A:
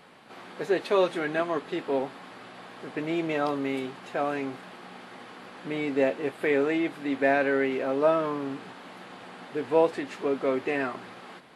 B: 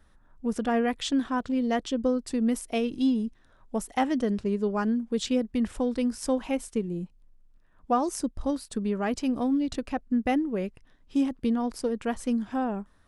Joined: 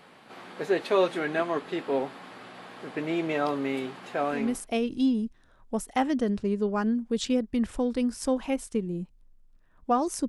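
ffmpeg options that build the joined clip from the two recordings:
-filter_complex "[0:a]apad=whole_dur=10.28,atrim=end=10.28,atrim=end=4.68,asetpts=PTS-STARTPTS[a];[1:a]atrim=start=2.29:end=8.29,asetpts=PTS-STARTPTS[b];[a][b]acrossfade=d=0.4:c1=qsin:c2=qsin"

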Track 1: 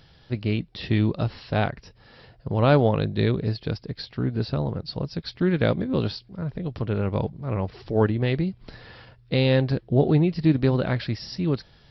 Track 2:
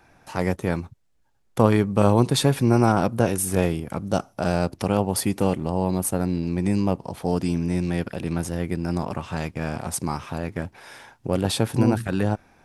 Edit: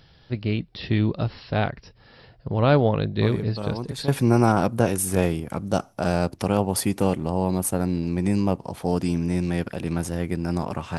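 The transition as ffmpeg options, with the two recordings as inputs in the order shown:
-filter_complex "[1:a]asplit=2[a][b];[0:a]apad=whole_dur=10.98,atrim=end=10.98,atrim=end=4.082[c];[b]atrim=start=2.478:end=9.38[d];[a]atrim=start=1.62:end=2.48,asetpts=PTS-STARTPTS,volume=-13.5dB,afade=t=in:d=0.004:c=hsin,afade=t=out:st=0.856:d=0.004:c=hsin,adelay=3220[e];[c][d]acrossfade=d=0.004:c1=hsin:c2=hsin[f];[f][e]amix=inputs=2:normalize=0"

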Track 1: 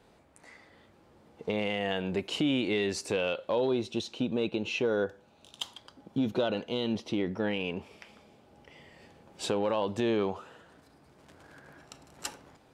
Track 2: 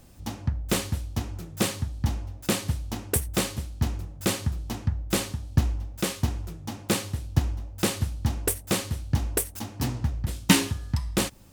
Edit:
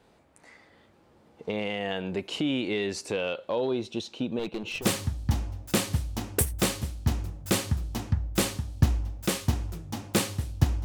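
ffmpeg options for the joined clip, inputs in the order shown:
-filter_complex "[0:a]asettb=1/sr,asplit=3[a][b][c];[a]atrim=end=4.394[d];[b]atrim=start=4.39:end=4.87,asetpts=PTS-STARTPTS,afade=t=in:d=0.004:c=qsin,afade=t=out:st=0.476:d=0.004:c=qsin,aeval=exprs='clip(val(0),-1,0.0251)':c=same[e];[c]atrim=start=4.866[f];[d][e]acrossfade=d=0.004:c1=hsin:c2=qsin[g];[g][f]acrossfade=d=0.004:c1=qsin:c2=hsin,apad=whole_dur=10.84,atrim=end=10.84,atrim=end=4.87,asetpts=PTS-STARTPTS[h];[1:a]atrim=start=1.52:end=7.59,asetpts=PTS-STARTPTS[i];[h][i]acrossfade=d=0.1:c1=tri:c2=tri"

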